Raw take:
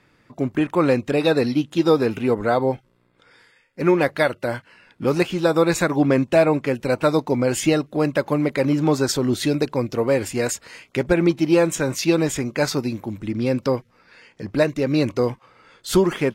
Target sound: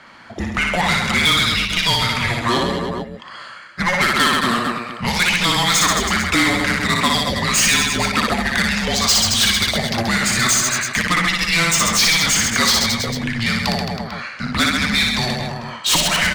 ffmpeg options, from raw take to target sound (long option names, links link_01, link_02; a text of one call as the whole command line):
ffmpeg -i in.wav -filter_complex "[0:a]adynamicsmooth=sensitivity=1.5:basefreq=4400,asplit=2[link_01][link_02];[link_02]aecho=0:1:60|132|218.4|322.1|446.5:0.631|0.398|0.251|0.158|0.1[link_03];[link_01][link_03]amix=inputs=2:normalize=0,afreqshift=-350,aemphasis=mode=production:type=50fm,acrossover=split=1800[link_04][link_05];[link_04]acompressor=threshold=-25dB:ratio=6[link_06];[link_06][link_05]amix=inputs=2:normalize=0,asplit=2[link_07][link_08];[link_08]highpass=frequency=720:poles=1,volume=25dB,asoftclip=type=tanh:threshold=-5.5dB[link_09];[link_07][link_09]amix=inputs=2:normalize=0,lowpass=frequency=7700:poles=1,volume=-6dB" out.wav